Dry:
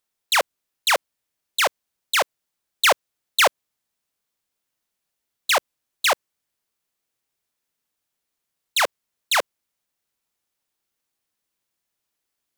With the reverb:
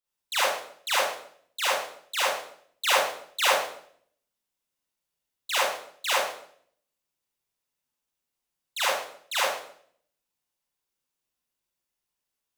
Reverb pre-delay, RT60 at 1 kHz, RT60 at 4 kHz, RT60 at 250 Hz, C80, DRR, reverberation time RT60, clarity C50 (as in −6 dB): 35 ms, 0.55 s, 0.55 s, 0.75 s, 3.5 dB, −9.0 dB, 0.60 s, −2.5 dB